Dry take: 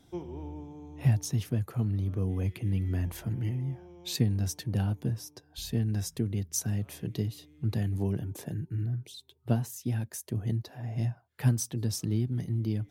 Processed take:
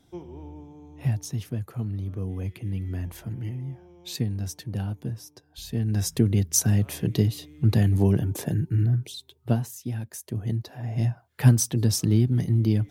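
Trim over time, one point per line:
5.66 s -1 dB
6.13 s +9.5 dB
8.96 s +9.5 dB
9.93 s -0.5 dB
11.53 s +8.5 dB

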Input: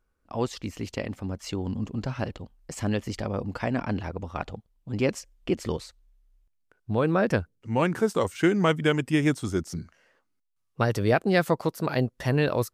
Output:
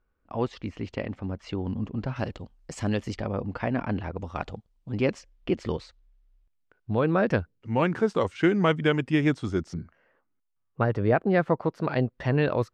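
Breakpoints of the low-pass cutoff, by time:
2.9 kHz
from 2.16 s 7.1 kHz
from 3.14 s 3.1 kHz
from 4.16 s 7.4 kHz
from 4.89 s 4 kHz
from 9.74 s 1.8 kHz
from 11.72 s 3 kHz

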